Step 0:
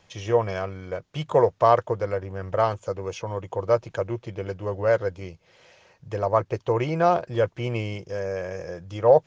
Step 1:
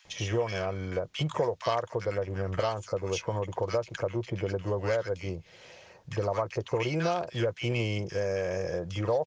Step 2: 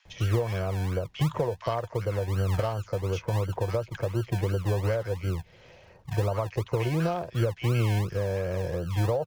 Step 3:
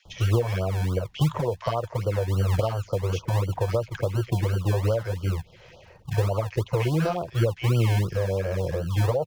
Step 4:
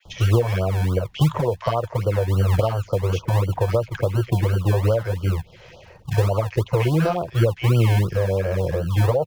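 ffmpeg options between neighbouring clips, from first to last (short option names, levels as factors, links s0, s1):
-filter_complex "[0:a]acrossover=split=2100[s0][s1];[s0]acompressor=threshold=0.0316:ratio=6[s2];[s2][s1]amix=inputs=2:normalize=0,acrossover=split=1300[s3][s4];[s3]adelay=50[s5];[s5][s4]amix=inputs=2:normalize=0,volume=1.58"
-filter_complex "[0:a]aemphasis=mode=reproduction:type=bsi,acrossover=split=170|670|3300[s0][s1][s2][s3];[s0]acrusher=samples=42:mix=1:aa=0.000001:lfo=1:lforange=25.2:lforate=2.8[s4];[s4][s1][s2][s3]amix=inputs=4:normalize=0,volume=0.794"
-af "afftfilt=real='re*(1-between(b*sr/1024,210*pow(2100/210,0.5+0.5*sin(2*PI*3.5*pts/sr))/1.41,210*pow(2100/210,0.5+0.5*sin(2*PI*3.5*pts/sr))*1.41))':imag='im*(1-between(b*sr/1024,210*pow(2100/210,0.5+0.5*sin(2*PI*3.5*pts/sr))/1.41,210*pow(2100/210,0.5+0.5*sin(2*PI*3.5*pts/sr))*1.41))':win_size=1024:overlap=0.75,volume=1.5"
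-af "adynamicequalizer=threshold=0.00224:dfrequency=5800:dqfactor=0.93:tfrequency=5800:tqfactor=0.93:attack=5:release=100:ratio=0.375:range=2:mode=cutabove:tftype=bell,volume=1.68"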